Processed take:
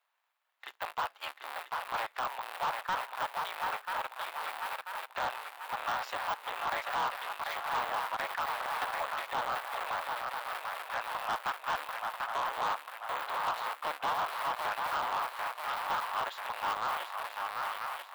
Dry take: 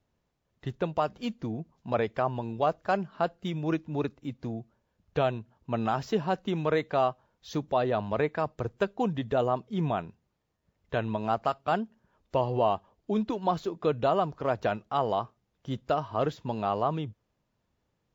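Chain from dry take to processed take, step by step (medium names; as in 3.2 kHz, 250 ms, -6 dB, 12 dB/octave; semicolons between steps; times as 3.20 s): cycle switcher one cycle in 3, inverted; high-pass 910 Hz 24 dB/octave; peaking EQ 6 kHz -12 dB 0.95 oct; shuffle delay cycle 988 ms, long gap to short 3:1, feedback 42%, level -7 dB; de-esser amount 70%; saturation -32.5 dBFS, distortion -11 dB; trim +6 dB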